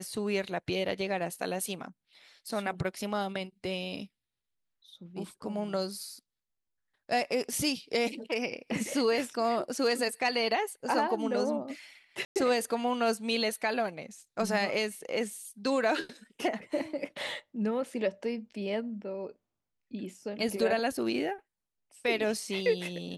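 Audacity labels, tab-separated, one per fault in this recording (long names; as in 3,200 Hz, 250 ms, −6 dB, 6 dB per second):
12.250000	12.360000	drop-out 108 ms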